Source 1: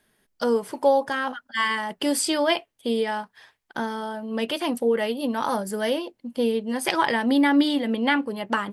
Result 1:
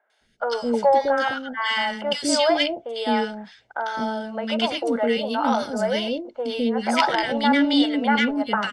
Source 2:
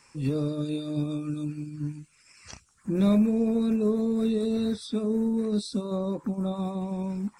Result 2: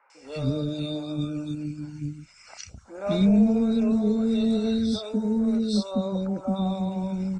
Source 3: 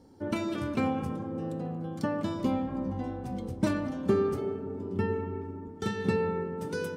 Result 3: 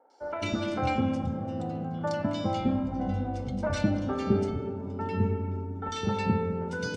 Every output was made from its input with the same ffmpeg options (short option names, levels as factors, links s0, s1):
-filter_complex "[0:a]lowpass=f=7000:w=0.5412,lowpass=f=7000:w=1.3066,equalizer=f=150:w=3.5:g=-6.5,aecho=1:1:1.4:0.45,asplit=2[s0][s1];[s1]aeval=exprs='0.501*sin(PI/2*1.78*val(0)/0.501)':c=same,volume=0.251[s2];[s0][s2]amix=inputs=2:normalize=0,acrossover=split=480|1600[s3][s4][s5];[s5]adelay=100[s6];[s3]adelay=210[s7];[s7][s4][s6]amix=inputs=3:normalize=0"